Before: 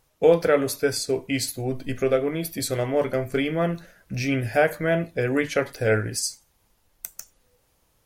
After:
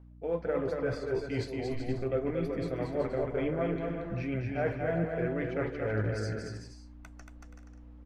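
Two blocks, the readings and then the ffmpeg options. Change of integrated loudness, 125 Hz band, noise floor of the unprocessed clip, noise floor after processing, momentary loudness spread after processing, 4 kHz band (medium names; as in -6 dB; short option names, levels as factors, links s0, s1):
-9.0 dB, -5.0 dB, -67 dBFS, -51 dBFS, 20 LU, -17.0 dB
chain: -af "lowpass=1700,areverse,acompressor=threshold=0.0282:ratio=6,areverse,aphaser=in_gain=1:out_gain=1:delay=3.3:decay=0.33:speed=2:type=triangular,aeval=exprs='val(0)+0.00282*(sin(2*PI*60*n/s)+sin(2*PI*2*60*n/s)/2+sin(2*PI*3*60*n/s)/3+sin(2*PI*4*60*n/s)/4+sin(2*PI*5*60*n/s)/5)':c=same,aecho=1:1:230|379.5|476.7|539.8|580.9:0.631|0.398|0.251|0.158|0.1"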